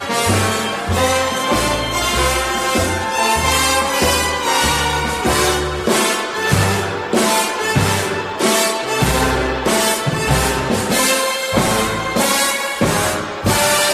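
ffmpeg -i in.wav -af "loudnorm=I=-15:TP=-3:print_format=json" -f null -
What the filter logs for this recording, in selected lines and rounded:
"input_i" : "-15.9",
"input_tp" : "-1.8",
"input_lra" : "1.0",
"input_thresh" : "-25.9",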